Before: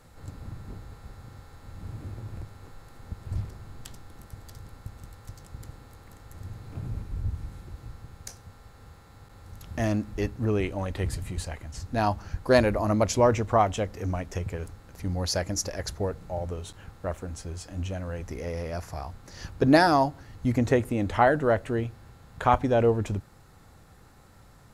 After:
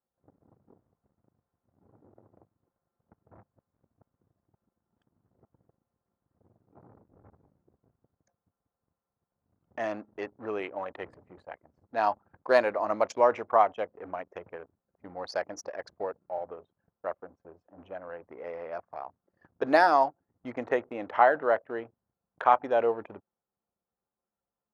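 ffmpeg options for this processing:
-filter_complex "[0:a]asplit=3[s0][s1][s2];[s0]atrim=end=3.432[s3];[s1]atrim=start=3.428:end=5.452,asetpts=PTS-STARTPTS,areverse[s4];[s2]atrim=start=5.448[s5];[s3][s4]acrossfade=d=0.004:c1=hsin:c2=hsin[s6];[s6][s5]acrossfade=d=0.004:c1=hsin:c2=hsin,lowpass=f=1100:p=1,anlmdn=1,highpass=690,volume=1.68"

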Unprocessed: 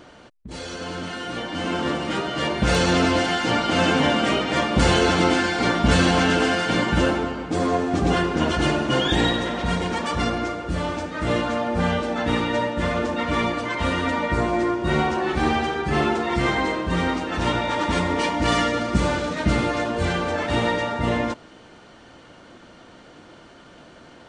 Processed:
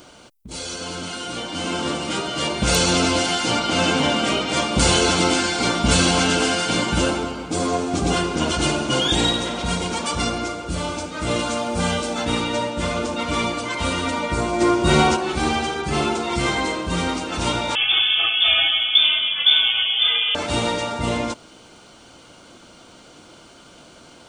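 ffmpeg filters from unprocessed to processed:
-filter_complex "[0:a]asettb=1/sr,asplit=3[s0][s1][s2];[s0]atrim=end=3.594[s3];[s1]atrim=start=3.59:end=4.49,asetpts=PTS-STARTPTS,afade=t=in:d=0.004:c=qsin,afade=t=out:st=0.896:d=0.004:c=qsin,highshelf=f=8300:g=-8[s4];[s2]atrim=start=4.486[s5];[s3][s4]acrossfade=d=0.004:c1=hsin:c2=qsin[s6];[s6][s5]acrossfade=d=0.004:c1=qsin:c2=hsin,asettb=1/sr,asplit=3[s7][s8][s9];[s7]atrim=end=11.394[s10];[s8]atrim=start=11.39:end=12.25,asetpts=PTS-STARTPTS,afade=t=in:d=0.004:c=qsin,afade=t=out:st=0.856:d=0.004:c=qsin,highshelf=f=5700:g=8[s11];[s9]atrim=start=12.246[s12];[s10][s11]acrossfade=d=0.004:c1=hsin:c2=qsin[s13];[s13][s12]acrossfade=d=0.004:c1=qsin:c2=hsin,asplit=3[s14][s15][s16];[s14]afade=t=out:st=14.6:d=0.02[s17];[s15]acontrast=65,afade=t=in:st=14.6:d=0.02,afade=t=out:st=15.15:d=0.02[s18];[s16]afade=t=in:st=15.15:d=0.02[s19];[s17][s18][s19]amix=inputs=3:normalize=0,asettb=1/sr,asplit=3[s20][s21][s22];[s20]atrim=end=17.754[s23];[s21]atrim=start=17.75:end=20.35,asetpts=PTS-STARTPTS,afade=t=in:d=0.004:c=qsin,afade=t=out:st=2.596:d=0.004:c=qsin,lowpass=f=3100:t=q:w=0.5098,lowpass=f=3100:t=q:w=0.6013,lowpass=f=3100:t=q:w=0.9,lowpass=f=3100:t=q:w=2.563,afreqshift=-3600[s24];[s22]atrim=start=20.346[s25];[s23][s24]acrossfade=d=0.004:c1=hsin:c2=qsin[s26];[s26][s25]acrossfade=d=0.004:c1=qsin:c2=hsin,aemphasis=mode=production:type=75fm,bandreject=f=1800:w=5.6"

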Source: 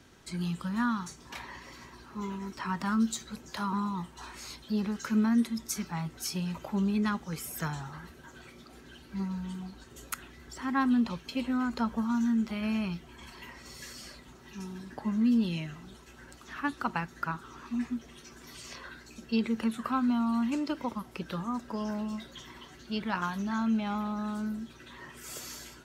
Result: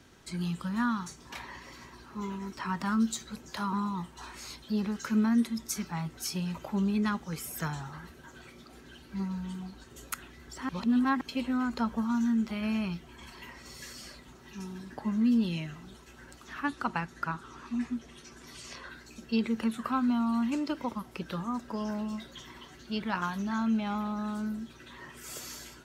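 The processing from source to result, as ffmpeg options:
-filter_complex "[0:a]asettb=1/sr,asplit=3[s0][s1][s2];[s0]atrim=end=16.654[s3];[s1]atrim=start=16.65:end=18.9,asetpts=PTS-STARTPTS,afade=t=in:d=0.004:c=qsin,afade=t=out:st=2.246:d=0.004:c=qsin,lowpass=f=12000:w=0.5412,lowpass=f=12000:w=1.3066[s4];[s2]atrim=start=18.896[s5];[s3][s4]acrossfade=d=0.004:c1=hsin:c2=qsin[s6];[s6][s5]acrossfade=d=0.004:c1=qsin:c2=hsin,asplit=3[s7][s8][s9];[s7]atrim=end=10.692[s10];[s8]atrim=start=10.688:end=11.212,asetpts=PTS-STARTPTS,areverse[s11];[s9]atrim=start=11.208[s12];[s10][s11]acrossfade=d=0.004:c1=hsin:c2=hsin[s13];[s13][s12]acrossfade=d=0.004:c1=hsin:c2=hsin"

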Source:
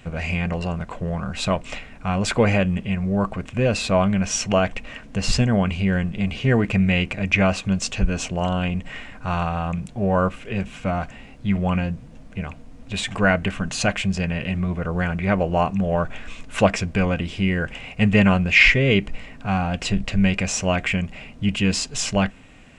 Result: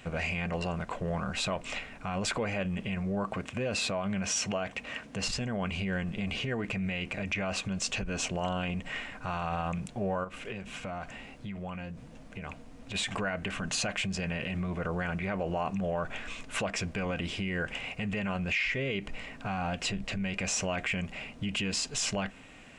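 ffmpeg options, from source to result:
-filter_complex "[0:a]asettb=1/sr,asplit=3[s0][s1][s2];[s0]atrim=end=3.234[s3];[s1]atrim=start=3.23:end=5.25,asetpts=PTS-STARTPTS,afade=t=in:d=0.004:c=qsin,afade=t=out:st=2.016:d=0.004:c=qsin,highpass=63[s4];[s2]atrim=start=5.246[s5];[s3][s4]acrossfade=d=0.004:c1=hsin:c2=qsin[s6];[s6][s5]acrossfade=d=0.004:c1=qsin:c2=hsin,asplit=3[s7][s8][s9];[s7]afade=t=out:st=10.23:d=0.02[s10];[s8]acompressor=threshold=0.0316:ratio=12:attack=3.2:release=140:knee=1:detection=peak,afade=t=in:st=10.23:d=0.02,afade=t=out:st=12.94:d=0.02[s11];[s9]afade=t=in:st=12.94:d=0.02[s12];[s10][s11][s12]amix=inputs=3:normalize=0,acompressor=threshold=0.112:ratio=6,alimiter=limit=0.0944:level=0:latency=1:release=34,lowshelf=f=200:g=-8.5,volume=0.891"

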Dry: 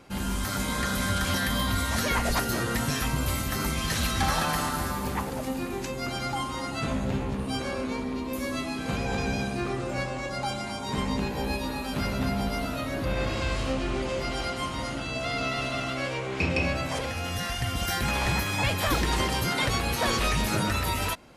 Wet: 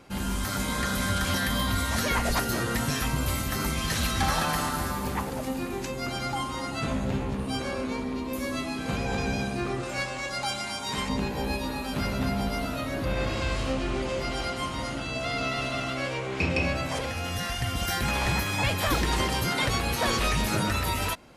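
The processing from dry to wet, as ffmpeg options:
-filter_complex "[0:a]asettb=1/sr,asplit=3[s0][s1][s2];[s0]atrim=end=9.834[s3];[s1]atrim=start=9.83:end=11.09,asetpts=PTS-STARTPTS,afade=t=in:d=0.004:c=qsin,afade=t=out:st=1.256:d=0.004:c=qsin,tiltshelf=f=970:g=-5.5[s4];[s2]atrim=start=11.086[s5];[s3][s4]acrossfade=d=0.004:c1=hsin:c2=qsin[s6];[s6][s5]acrossfade=d=0.004:c1=qsin:c2=hsin"

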